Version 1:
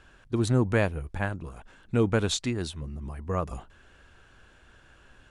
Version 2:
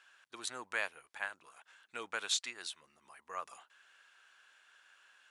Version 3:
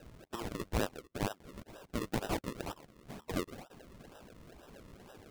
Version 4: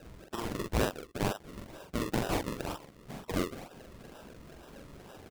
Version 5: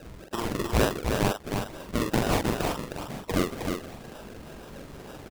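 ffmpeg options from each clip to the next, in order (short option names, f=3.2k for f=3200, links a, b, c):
-af "highpass=1.3k,volume=-3dB"
-af "acompressor=threshold=-52dB:ratio=1.5,highshelf=f=5.7k:g=-11,acrusher=samples=39:mix=1:aa=0.000001:lfo=1:lforange=39:lforate=2.1,volume=11.5dB"
-filter_complex "[0:a]asplit=2[a][b];[b]adelay=44,volume=-3dB[c];[a][c]amix=inputs=2:normalize=0,volume=2.5dB"
-af "aecho=1:1:312:0.562,volume=6dB"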